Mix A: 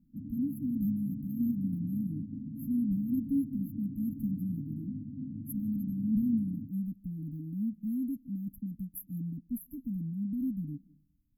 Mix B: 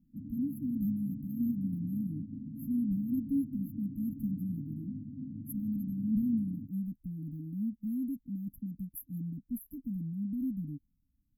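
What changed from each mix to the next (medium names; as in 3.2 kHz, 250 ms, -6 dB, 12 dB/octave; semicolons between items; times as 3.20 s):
reverb: off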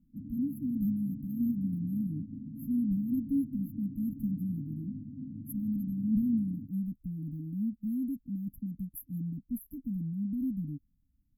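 speech: add bass shelf 190 Hz +4 dB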